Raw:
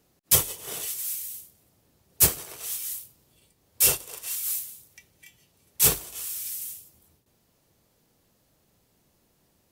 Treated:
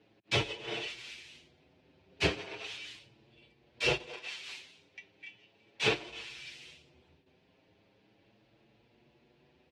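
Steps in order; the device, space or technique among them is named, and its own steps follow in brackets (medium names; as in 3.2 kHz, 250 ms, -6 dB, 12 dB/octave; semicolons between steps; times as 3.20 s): 4.13–6.06 s: high-pass 210 Hz 6 dB/octave; barber-pole flanger into a guitar amplifier (endless flanger 7 ms +0.37 Hz; saturation -16 dBFS, distortion -14 dB; cabinet simulation 83–3800 Hz, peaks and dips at 88 Hz -4 dB, 170 Hz -4 dB, 350 Hz +4 dB, 1.2 kHz -7 dB, 2.5 kHz +6 dB); trim +5.5 dB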